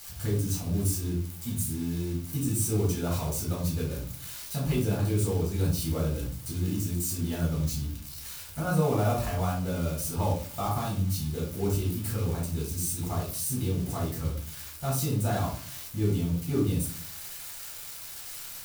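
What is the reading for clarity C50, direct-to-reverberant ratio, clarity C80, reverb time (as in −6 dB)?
5.5 dB, −4.0 dB, 11.0 dB, 0.50 s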